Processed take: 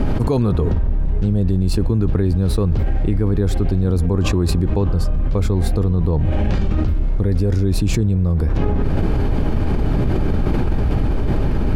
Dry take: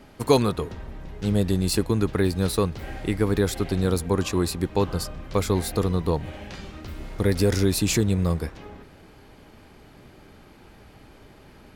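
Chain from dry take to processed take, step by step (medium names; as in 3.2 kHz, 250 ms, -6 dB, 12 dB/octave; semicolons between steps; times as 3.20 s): tilt EQ -3.5 dB/octave; band-stop 2 kHz, Q 18; level flattener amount 100%; trim -7.5 dB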